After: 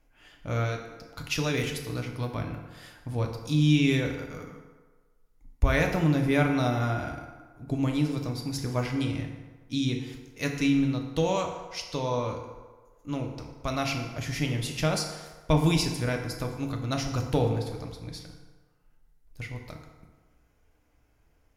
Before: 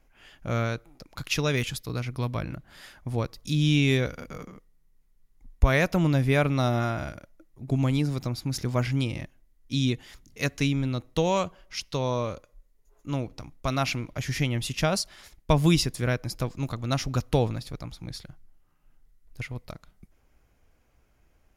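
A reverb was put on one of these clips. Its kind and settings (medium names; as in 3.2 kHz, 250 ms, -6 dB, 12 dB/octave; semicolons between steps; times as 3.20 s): FDN reverb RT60 1.4 s, low-frequency decay 0.75×, high-frequency decay 0.6×, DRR 2 dB; trim -3.5 dB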